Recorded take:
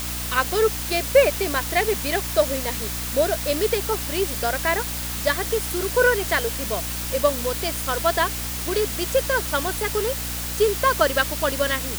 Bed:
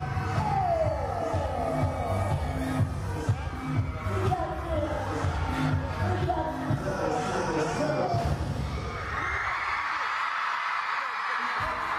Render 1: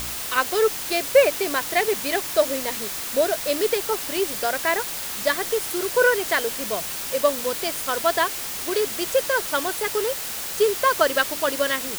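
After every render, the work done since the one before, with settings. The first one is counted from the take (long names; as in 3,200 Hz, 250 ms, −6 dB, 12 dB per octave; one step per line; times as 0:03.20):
hum removal 60 Hz, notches 5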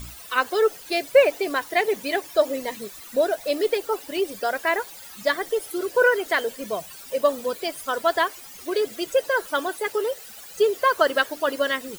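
broadband denoise 16 dB, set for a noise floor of −31 dBFS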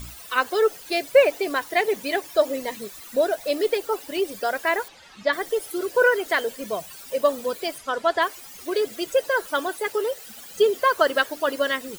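0:04.88–0:05.33: low-pass filter 4,100 Hz
0:07.78–0:08.22: high-frequency loss of the air 59 metres
0:10.26–0:10.80: hollow resonant body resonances 230/3,200 Hz, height 11 dB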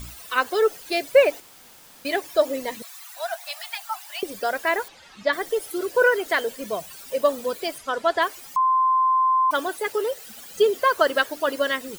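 0:01.40–0:02.05: fill with room tone
0:02.82–0:04.23: Butterworth high-pass 680 Hz 96 dB per octave
0:08.56–0:09.51: beep over 1,040 Hz −16 dBFS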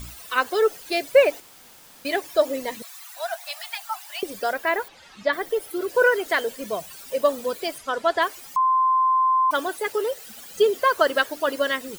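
0:04.51–0:05.89: dynamic equaliser 7,100 Hz, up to −6 dB, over −46 dBFS, Q 0.72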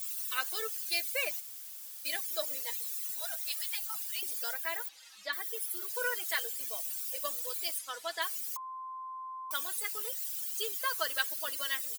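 first difference
comb filter 6.3 ms, depth 56%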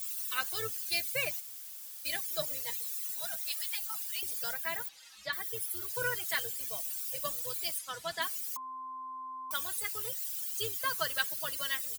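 sub-octave generator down 2 octaves, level 0 dB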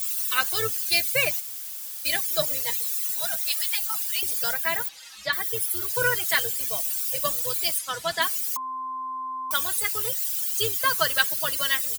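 level +10 dB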